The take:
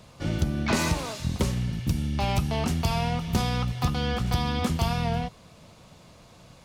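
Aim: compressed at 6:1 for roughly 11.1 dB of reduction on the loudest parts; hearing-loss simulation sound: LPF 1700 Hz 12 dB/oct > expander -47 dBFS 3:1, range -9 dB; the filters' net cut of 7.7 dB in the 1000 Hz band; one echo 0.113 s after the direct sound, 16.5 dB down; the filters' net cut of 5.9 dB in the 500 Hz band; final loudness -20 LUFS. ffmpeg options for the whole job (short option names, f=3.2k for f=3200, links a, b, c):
-af "equalizer=f=500:t=o:g=-5,equalizer=f=1k:t=o:g=-8,acompressor=threshold=-32dB:ratio=6,lowpass=1.7k,aecho=1:1:113:0.15,agate=range=-9dB:threshold=-47dB:ratio=3,volume=17dB"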